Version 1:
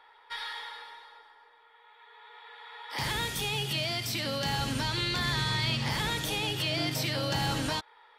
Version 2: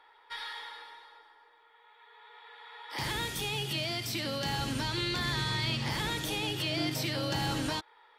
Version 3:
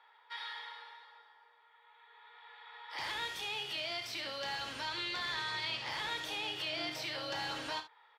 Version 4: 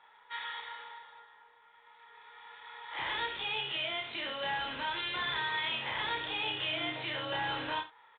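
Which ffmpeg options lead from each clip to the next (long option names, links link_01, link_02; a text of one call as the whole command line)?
ffmpeg -i in.wav -af "equalizer=frequency=330:width_type=o:width=0.38:gain=5.5,volume=-2.5dB" out.wav
ffmpeg -i in.wav -filter_complex "[0:a]acrossover=split=480 5600:gain=0.126 1 0.224[link_01][link_02][link_03];[link_01][link_02][link_03]amix=inputs=3:normalize=0,aecho=1:1:32|68:0.335|0.224,volume=-3.5dB" out.wav
ffmpeg -i in.wav -filter_complex "[0:a]asplit=2[link_01][link_02];[link_02]adelay=30,volume=-3dB[link_03];[link_01][link_03]amix=inputs=2:normalize=0,volume=2.5dB" -ar 8000 -c:a adpcm_g726 -b:a 40k out.wav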